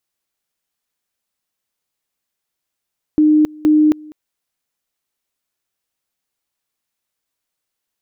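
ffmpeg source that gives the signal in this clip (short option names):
-f lavfi -i "aevalsrc='pow(10,(-8-25*gte(mod(t,0.47),0.27))/20)*sin(2*PI*305*t)':d=0.94:s=44100"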